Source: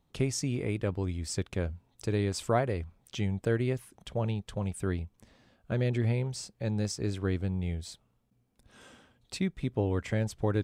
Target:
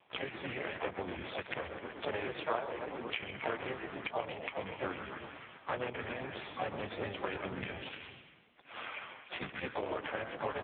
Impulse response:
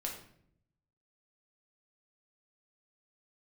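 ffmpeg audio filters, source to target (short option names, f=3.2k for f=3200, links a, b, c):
-filter_complex "[0:a]equalizer=f=3.1k:t=o:w=0.47:g=13.5,asplit=4[a][b][c][d];[b]asetrate=33038,aresample=44100,atempo=1.33484,volume=-1dB[e];[c]asetrate=58866,aresample=44100,atempo=0.749154,volume=-7dB[f];[d]asetrate=88200,aresample=44100,atempo=0.5,volume=-14dB[g];[a][e][f][g]amix=inputs=4:normalize=0,acrossover=split=570 2900:gain=0.0891 1 0.141[h][i][j];[h][i][j]amix=inputs=3:normalize=0,asplit=2[k][l];[l]asplit=6[m][n][o][p][q][r];[m]adelay=125,afreqshift=-56,volume=-10dB[s];[n]adelay=250,afreqshift=-112,volume=-15.8dB[t];[o]adelay=375,afreqshift=-168,volume=-21.7dB[u];[p]adelay=500,afreqshift=-224,volume=-27.5dB[v];[q]adelay=625,afreqshift=-280,volume=-33.4dB[w];[r]adelay=750,afreqshift=-336,volume=-39.2dB[x];[s][t][u][v][w][x]amix=inputs=6:normalize=0[y];[k][y]amix=inputs=2:normalize=0,acompressor=threshold=-48dB:ratio=8,asplit=2[z][aa];[aa]acrusher=samples=12:mix=1:aa=0.000001:lfo=1:lforange=7.2:lforate=3.1,volume=-4.5dB[ab];[z][ab]amix=inputs=2:normalize=0,acrossover=split=200[ac][ad];[ac]acompressor=threshold=-50dB:ratio=10[ae];[ae][ad]amix=inputs=2:normalize=0,aeval=exprs='0.0251*(cos(1*acos(clip(val(0)/0.0251,-1,1)))-cos(1*PI/2))+0.00282*(cos(3*acos(clip(val(0)/0.0251,-1,1)))-cos(3*PI/2))':c=same,asplit=2[af][ag];[ag]adelay=130,highpass=300,lowpass=3.4k,asoftclip=type=hard:threshold=-39.5dB,volume=-12dB[ah];[af][ah]amix=inputs=2:normalize=0,volume=16.5dB" -ar 8000 -c:a libopencore_amrnb -b:a 5150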